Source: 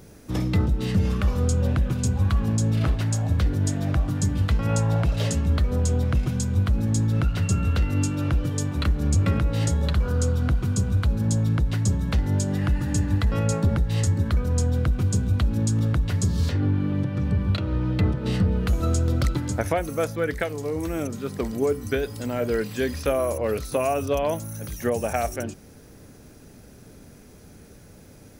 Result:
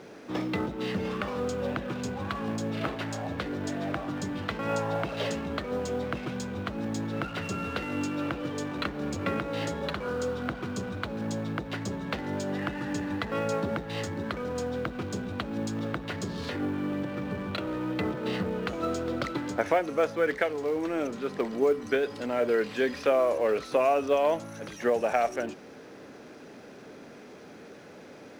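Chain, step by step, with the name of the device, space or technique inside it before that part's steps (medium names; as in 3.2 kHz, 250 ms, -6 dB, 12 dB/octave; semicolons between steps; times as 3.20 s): phone line with mismatched companding (band-pass 320–3400 Hz; companding laws mixed up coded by mu)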